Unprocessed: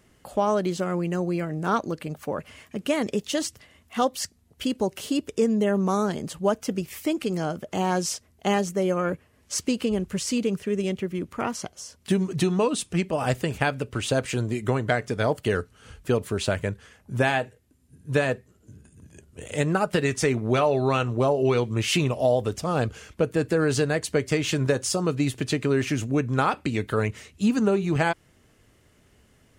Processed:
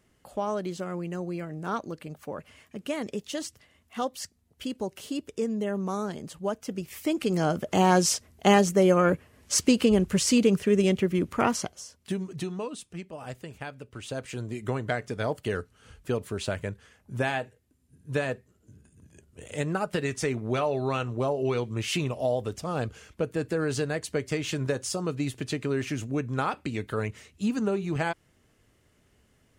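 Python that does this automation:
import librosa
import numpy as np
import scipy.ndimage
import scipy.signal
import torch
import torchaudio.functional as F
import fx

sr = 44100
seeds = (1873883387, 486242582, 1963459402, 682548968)

y = fx.gain(x, sr, db=fx.line((6.65, -7.0), (7.57, 4.0), (11.54, 4.0), (11.99, -7.0), (13.05, -14.5), (13.74, -14.5), (14.72, -5.5)))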